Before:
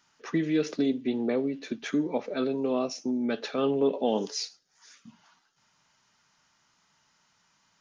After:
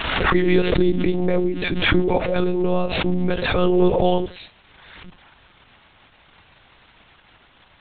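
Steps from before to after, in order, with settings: crackle 240 per s -39 dBFS; monotone LPC vocoder at 8 kHz 180 Hz; swell ahead of each attack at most 35 dB/s; trim +8 dB

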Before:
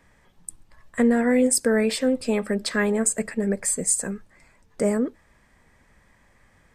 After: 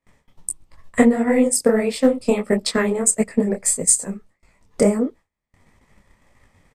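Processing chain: transient shaper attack +10 dB, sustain -5 dB; peaking EQ 1.6 kHz -11 dB 0.2 oct; gate with hold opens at -47 dBFS; resampled via 32 kHz; detune thickener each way 54 cents; trim +4.5 dB

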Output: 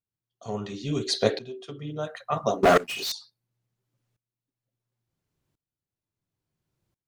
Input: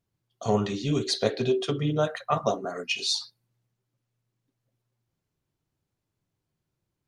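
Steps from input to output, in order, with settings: 2.63–3.12 s: waveshaping leveller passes 5; sawtooth tremolo in dB swelling 0.72 Hz, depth 21 dB; trim +4.5 dB

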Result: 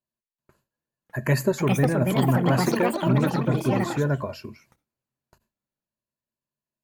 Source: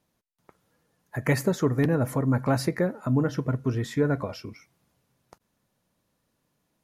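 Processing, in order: gate with hold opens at -50 dBFS; rippled EQ curve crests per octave 1.4, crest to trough 9 dB; ever faster or slower copies 728 ms, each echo +5 st, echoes 3

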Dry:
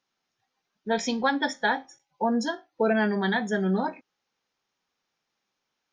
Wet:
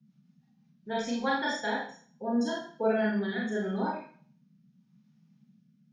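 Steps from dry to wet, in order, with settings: rotary cabinet horn 6.3 Hz, later 0.8 Hz, at 0.34 s; Schroeder reverb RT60 0.48 s, combs from 26 ms, DRR -4 dB; band noise 140–230 Hz -55 dBFS; trim -8 dB

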